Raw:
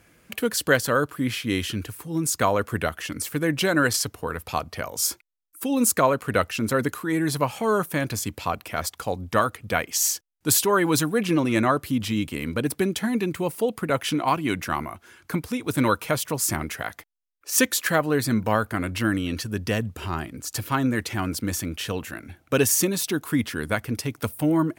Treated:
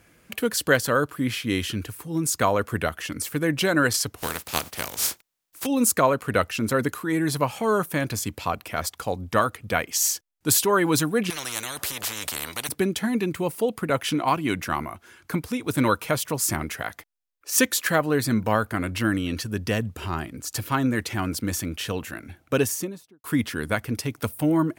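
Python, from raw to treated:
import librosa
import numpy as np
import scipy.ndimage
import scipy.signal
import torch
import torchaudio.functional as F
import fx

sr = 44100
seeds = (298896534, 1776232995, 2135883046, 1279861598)

y = fx.spec_flatten(x, sr, power=0.34, at=(4.17, 5.65), fade=0.02)
y = fx.spectral_comp(y, sr, ratio=10.0, at=(11.3, 12.69))
y = fx.studio_fade_out(y, sr, start_s=22.4, length_s=0.84)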